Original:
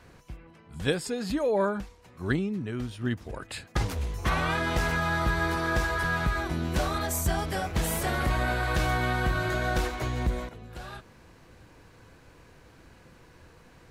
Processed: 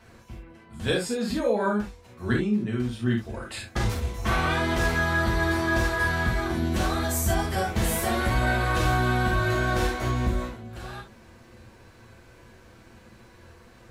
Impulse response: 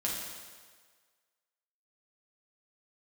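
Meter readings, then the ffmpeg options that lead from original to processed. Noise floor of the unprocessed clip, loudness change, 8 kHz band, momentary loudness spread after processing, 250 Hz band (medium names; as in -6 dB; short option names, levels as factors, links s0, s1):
-55 dBFS, +3.0 dB, +2.5 dB, 13 LU, +4.5 dB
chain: -filter_complex "[1:a]atrim=start_sample=2205,atrim=end_sample=3969,asetrate=48510,aresample=44100[s0];[0:a][s0]afir=irnorm=-1:irlink=0"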